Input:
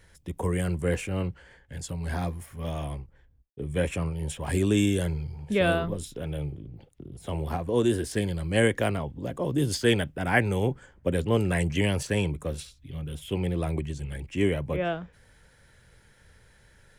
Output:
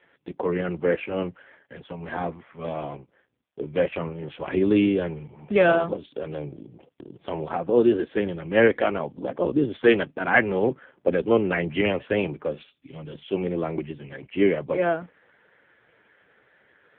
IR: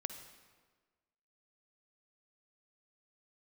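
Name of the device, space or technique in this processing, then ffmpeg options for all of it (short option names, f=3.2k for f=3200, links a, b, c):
telephone: -filter_complex "[0:a]asplit=3[a][b][c];[a]afade=t=out:st=12.01:d=0.02[d];[b]lowpass=f=5.2k:w=0.5412,lowpass=f=5.2k:w=1.3066,afade=t=in:st=12.01:d=0.02,afade=t=out:st=13.05:d=0.02[e];[c]afade=t=in:st=13.05:d=0.02[f];[d][e][f]amix=inputs=3:normalize=0,highpass=270,lowpass=3.1k,volume=7.5dB" -ar 8000 -c:a libopencore_amrnb -b:a 5150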